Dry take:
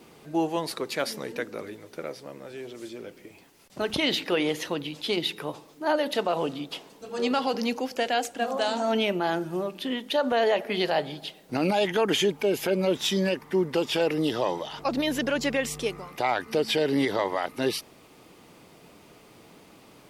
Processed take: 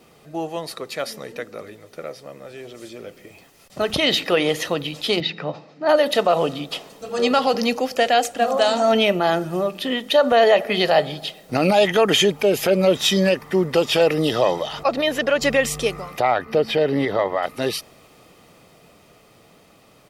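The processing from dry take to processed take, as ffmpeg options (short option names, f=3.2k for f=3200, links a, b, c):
-filter_complex "[0:a]asettb=1/sr,asplit=3[a][b][c];[a]atrim=end=5.204[d];[b]atrim=start=5.2:end=5.89,asetpts=PTS-STARTPTS,afade=t=in:d=0.004:c=qsin,afade=t=out:st=0.686:d=0.004:c=qsin,highpass=140,equalizer=f=170:t=q:w=4:g=8,equalizer=f=410:t=q:w=4:g=-6,equalizer=f=1.1k:t=q:w=4:g=-6,equalizer=f=3.3k:t=q:w=4:g=-9,lowpass=f=4.5k:w=0.5412,lowpass=f=4.5k:w=1.3066[e];[c]atrim=start=5.886[f];[d][e]acrossfade=d=0.004:c1=hsin:c2=qsin[g];[g][f]acrossfade=d=0.004:c1=qsin:c2=hsin,asettb=1/sr,asplit=3[h][i][j];[h]atrim=end=14.834[k];[i]atrim=start=14.83:end=15.42,asetpts=PTS-STARTPTS,afade=t=in:d=0.004:c=qsin,afade=t=out:st=0.586:d=0.004:c=qsin,bass=f=250:g=-10,treble=f=4k:g=-7[l];[j]atrim=start=15.416[m];[k][l]acrossfade=d=0.004:c1=hsin:c2=qsin[n];[n][m]acrossfade=d=0.004:c1=qsin:c2=hsin,asettb=1/sr,asplit=3[o][p][q];[o]atrim=end=16.204[r];[p]atrim=start=16.2:end=17.43,asetpts=PTS-STARTPTS,afade=t=in:d=0.004:c=qsin,afade=t=out:st=1.226:d=0.004:c=qsin,equalizer=f=8.4k:t=o:w=2.1:g=-14.5[s];[q]atrim=start=17.426[t];[r][s]acrossfade=d=0.004:c1=hsin:c2=qsin[u];[u][t]acrossfade=d=0.004:c1=qsin:c2=hsin,dynaudnorm=f=370:g=17:m=7.5dB,aecho=1:1:1.6:0.36"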